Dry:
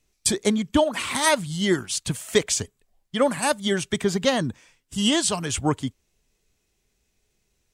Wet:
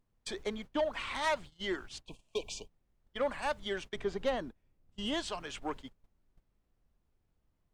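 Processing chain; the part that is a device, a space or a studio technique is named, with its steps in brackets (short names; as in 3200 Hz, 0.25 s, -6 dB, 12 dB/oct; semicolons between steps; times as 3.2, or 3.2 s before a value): aircraft cabin announcement (BPF 430–3700 Hz; soft clip -16.5 dBFS, distortion -16 dB; brown noise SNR 12 dB); harmonic-percussive split percussive -3 dB; gate -37 dBFS, range -22 dB; 2.05–2.94 spectral repair 1100–2300 Hz after; 3.95–5.14 tilt shelf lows +4 dB, about 780 Hz; gain -7 dB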